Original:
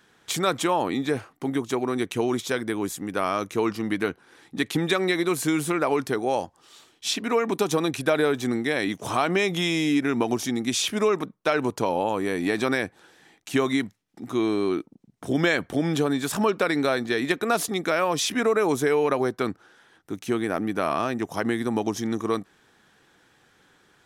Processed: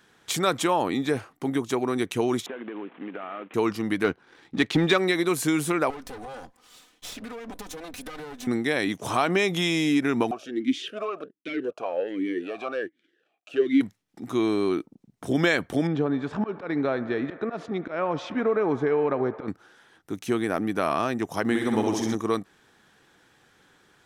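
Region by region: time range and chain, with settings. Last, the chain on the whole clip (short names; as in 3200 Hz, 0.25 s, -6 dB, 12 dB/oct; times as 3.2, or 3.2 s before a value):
2.46–3.54 CVSD 16 kbps + HPF 220 Hz 24 dB/oct + compressor 10:1, threshold -31 dBFS
4.04–4.98 LPF 5000 Hz + sample leveller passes 1
5.9–8.47 minimum comb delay 4 ms + compressor 16:1, threshold -34 dBFS
10.31–13.81 sample leveller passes 2 + vowel sweep a-i 1.3 Hz
15.87–19.48 auto swell 0.114 s + tape spacing loss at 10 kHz 38 dB + band-limited delay 72 ms, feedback 84%, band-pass 1100 Hz, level -15.5 dB
21.44–22.15 LPF 11000 Hz + short-mantissa float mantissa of 6-bit + flutter echo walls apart 10.9 m, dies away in 0.87 s
whole clip: dry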